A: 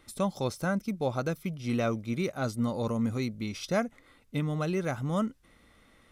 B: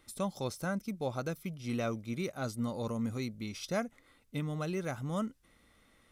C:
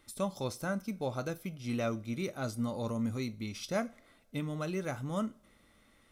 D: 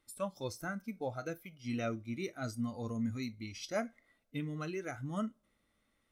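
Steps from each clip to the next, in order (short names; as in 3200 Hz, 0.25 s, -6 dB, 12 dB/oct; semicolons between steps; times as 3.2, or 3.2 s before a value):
high shelf 5000 Hz +5 dB; gain -5.5 dB
two-slope reverb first 0.3 s, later 2 s, from -27 dB, DRR 11 dB
spectral noise reduction 11 dB; gain -1.5 dB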